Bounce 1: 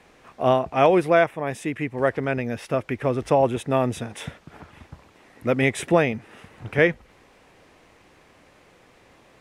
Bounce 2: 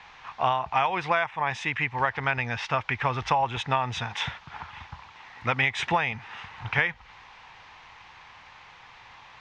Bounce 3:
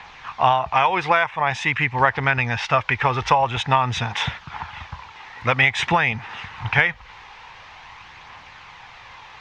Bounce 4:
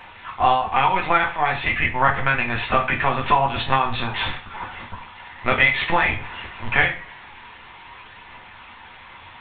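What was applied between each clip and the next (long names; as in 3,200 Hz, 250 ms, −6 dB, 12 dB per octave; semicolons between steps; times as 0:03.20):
drawn EQ curve 120 Hz 0 dB, 300 Hz −13 dB, 610 Hz −7 dB, 880 Hz +12 dB, 1,300 Hz +7 dB, 3,600 Hz +9 dB, 6,400 Hz +1 dB, 11,000 Hz −30 dB; downward compressor 12 to 1, threshold −20 dBFS, peak gain reduction 12.5 dB
phase shifter 0.48 Hz, delay 2.5 ms, feedback 26%; level +6.5 dB
linear-prediction vocoder at 8 kHz pitch kept; coupled-rooms reverb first 0.35 s, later 2.2 s, from −26 dB, DRR 1.5 dB; level −2 dB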